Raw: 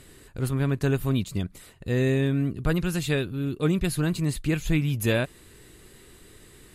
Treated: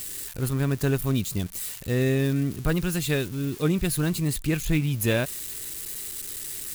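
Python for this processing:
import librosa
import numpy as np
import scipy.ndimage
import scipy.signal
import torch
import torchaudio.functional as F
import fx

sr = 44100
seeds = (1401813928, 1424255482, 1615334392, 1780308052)

y = x + 0.5 * 10.0 ** (-27.5 / 20.0) * np.diff(np.sign(x), prepend=np.sign(x[:1]))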